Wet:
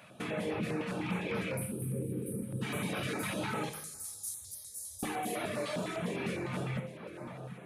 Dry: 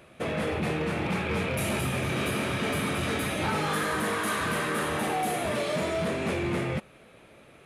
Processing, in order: HPF 110 Hz 24 dB/oct; split-band echo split 1700 Hz, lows 0.735 s, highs 0.301 s, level -14.5 dB; reverb removal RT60 0.91 s; 3.69–5.03 inverse Chebyshev band-stop 140–2900 Hz, stop band 40 dB; compressor, threshold -33 dBFS, peak gain reduction 8 dB; 1.57–2.62 spectral gain 550–8000 Hz -27 dB; two-slope reverb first 0.68 s, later 2.2 s, DRR 3.5 dB; stepped notch 9.9 Hz 370–7600 Hz

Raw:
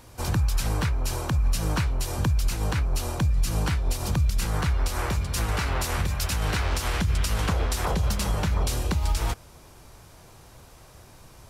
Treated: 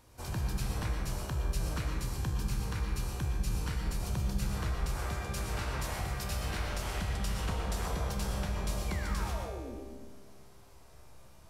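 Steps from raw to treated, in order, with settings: 1.77–3.85 bell 650 Hz -13 dB 0.26 oct; 8.88–9.76 painted sound fall 210–2400 Hz -35 dBFS; resonator 66 Hz, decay 1.4 s, harmonics all, mix 80%; reverb RT60 1.1 s, pre-delay 80 ms, DRR 2 dB

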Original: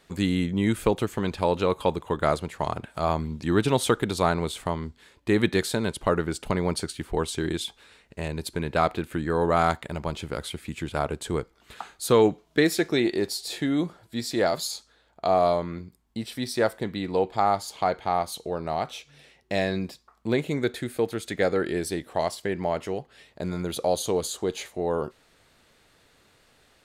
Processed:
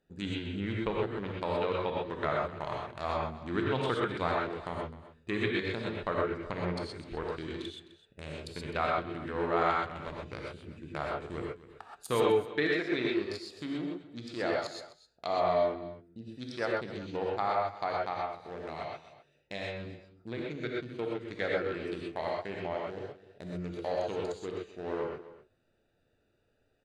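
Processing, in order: Wiener smoothing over 41 samples; treble ducked by the level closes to 2800 Hz, closed at -22.5 dBFS; tilt shelf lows -6 dB, about 1100 Hz; 18.12–20.58 compressor 4:1, threshold -29 dBFS, peak gain reduction 6.5 dB; flange 0.45 Hz, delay 7.9 ms, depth 1.3 ms, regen -89%; echo 0.257 s -16.5 dB; non-linear reverb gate 0.15 s rising, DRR -2 dB; gain -3 dB

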